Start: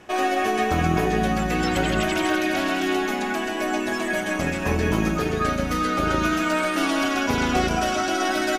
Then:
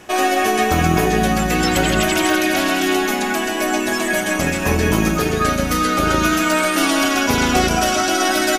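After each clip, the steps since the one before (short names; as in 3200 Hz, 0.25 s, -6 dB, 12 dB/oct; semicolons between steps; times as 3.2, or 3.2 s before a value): high shelf 5800 Hz +11 dB; gain +5 dB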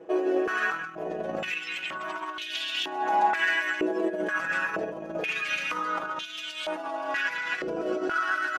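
comb 6.1 ms, depth 80%; negative-ratio compressor -18 dBFS, ratio -0.5; stepped band-pass 2.1 Hz 450–3300 Hz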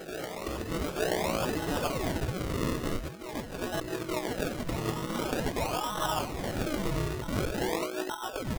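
negative-ratio compressor -32 dBFS, ratio -0.5; decimation with a swept rate 38×, swing 100% 0.46 Hz; on a send: reverse echo 0.877 s -9 dB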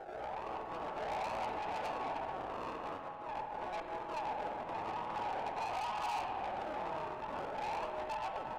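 band-pass 850 Hz, Q 5.5; tube stage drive 47 dB, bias 0.4; spring tank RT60 2.5 s, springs 50 ms, chirp 55 ms, DRR 4.5 dB; gain +10 dB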